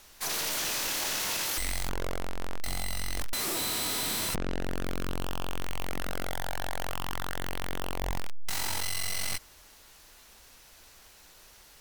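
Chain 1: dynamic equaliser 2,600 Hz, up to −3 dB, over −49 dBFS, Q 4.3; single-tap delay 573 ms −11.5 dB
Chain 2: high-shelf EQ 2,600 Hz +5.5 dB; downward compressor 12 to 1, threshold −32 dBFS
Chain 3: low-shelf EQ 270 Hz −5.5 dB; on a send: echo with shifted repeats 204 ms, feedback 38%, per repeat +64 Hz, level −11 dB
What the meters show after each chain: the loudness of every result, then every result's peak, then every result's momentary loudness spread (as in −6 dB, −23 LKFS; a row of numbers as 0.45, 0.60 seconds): −32.5, −36.0, −32.5 LKFS; −17.0, −18.5, −16.5 dBFS; 24, 16, 11 LU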